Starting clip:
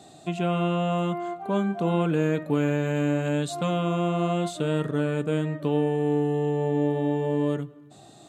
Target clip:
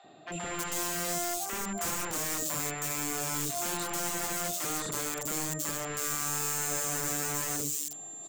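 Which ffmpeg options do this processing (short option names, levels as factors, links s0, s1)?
-filter_complex "[0:a]highpass=f=410:p=1,asoftclip=type=tanh:threshold=0.0447,aeval=exprs='val(0)+0.00794*sin(2*PI*7300*n/s)':c=same,aeval=exprs='(mod(26.6*val(0)+1,2)-1)/26.6':c=same,acrossover=split=630|3300[s0][s1][s2];[s0]adelay=40[s3];[s2]adelay=320[s4];[s3][s1][s4]amix=inputs=3:normalize=0,volume=1.12"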